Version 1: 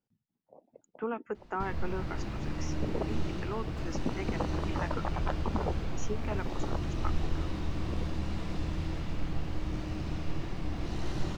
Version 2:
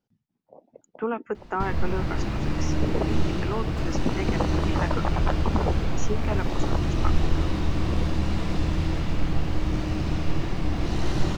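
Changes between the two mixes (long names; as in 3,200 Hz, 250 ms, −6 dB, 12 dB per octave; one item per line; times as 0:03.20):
speech +6.5 dB
background +9.0 dB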